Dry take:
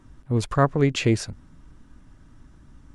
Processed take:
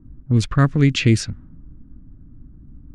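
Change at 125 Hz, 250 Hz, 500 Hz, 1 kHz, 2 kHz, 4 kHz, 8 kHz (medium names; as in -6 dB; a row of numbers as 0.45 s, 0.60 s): +7.0 dB, +5.5 dB, -3.0 dB, -2.5 dB, +4.5 dB, +6.0 dB, +4.0 dB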